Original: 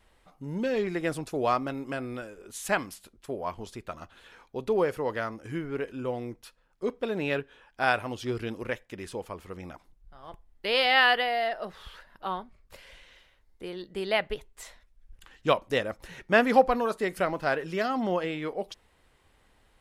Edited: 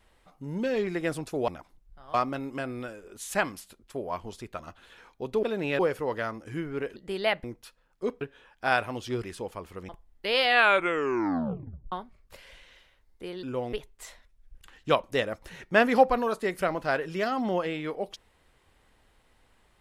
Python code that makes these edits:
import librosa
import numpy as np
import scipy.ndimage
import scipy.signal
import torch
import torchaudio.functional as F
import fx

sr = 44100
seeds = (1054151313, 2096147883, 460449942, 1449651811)

y = fx.edit(x, sr, fx.swap(start_s=5.94, length_s=0.3, other_s=13.83, other_length_s=0.48),
    fx.move(start_s=7.01, length_s=0.36, to_s=4.77),
    fx.cut(start_s=8.4, length_s=0.58),
    fx.move(start_s=9.63, length_s=0.66, to_s=1.48),
    fx.tape_stop(start_s=10.84, length_s=1.48), tone=tone)